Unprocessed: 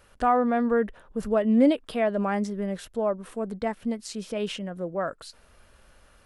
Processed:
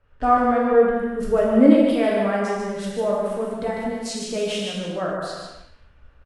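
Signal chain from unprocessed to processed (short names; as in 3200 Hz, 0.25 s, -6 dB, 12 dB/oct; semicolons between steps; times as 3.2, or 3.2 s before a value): non-linear reverb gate 0.48 s falling, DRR -4 dB; in parallel at +2 dB: compressor, threshold -31 dBFS, peak gain reduction 21 dB; on the sum: low-pass opened by the level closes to 1900 Hz, open at -18.5 dBFS; on a send: echo 0.149 s -6 dB; on the sum: three-band expander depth 40%; gain -3 dB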